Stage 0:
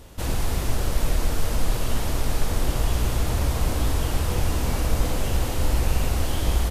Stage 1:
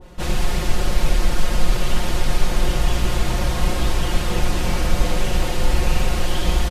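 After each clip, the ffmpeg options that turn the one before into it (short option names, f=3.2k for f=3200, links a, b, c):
-af "aemphasis=mode=reproduction:type=50kf,aecho=1:1:5.6:0.9,adynamicequalizer=threshold=0.00501:dfrequency=1700:dqfactor=0.7:tfrequency=1700:tqfactor=0.7:attack=5:release=100:ratio=0.375:range=3:mode=boostabove:tftype=highshelf,volume=1.5dB"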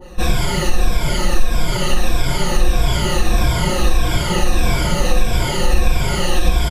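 -af "afftfilt=real='re*pow(10,16/40*sin(2*PI*(1.7*log(max(b,1)*sr/1024/100)/log(2)-(-1.6)*(pts-256)/sr)))':imag='im*pow(10,16/40*sin(2*PI*(1.7*log(max(b,1)*sr/1024/100)/log(2)-(-1.6)*(pts-256)/sr)))':win_size=1024:overlap=0.75,acompressor=threshold=-13dB:ratio=2.5,volume=3.5dB"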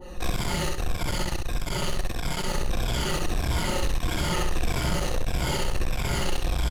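-af "asoftclip=type=tanh:threshold=-19.5dB,aecho=1:1:65|130|195|260|325:0.631|0.227|0.0818|0.0294|0.0106,volume=-4dB"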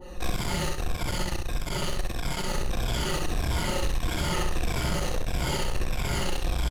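-filter_complex "[0:a]asplit=2[a][b];[b]adelay=38,volume=-13.5dB[c];[a][c]amix=inputs=2:normalize=0,volume=-1.5dB"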